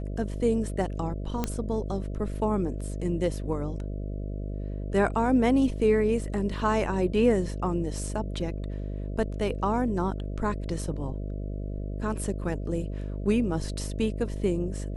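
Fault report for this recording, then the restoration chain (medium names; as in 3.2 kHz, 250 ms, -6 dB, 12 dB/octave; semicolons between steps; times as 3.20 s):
buzz 50 Hz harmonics 13 -33 dBFS
1.44 s: pop -13 dBFS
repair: de-click; de-hum 50 Hz, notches 13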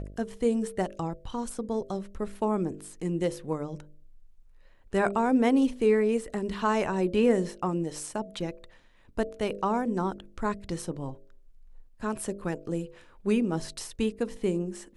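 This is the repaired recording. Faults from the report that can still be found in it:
nothing left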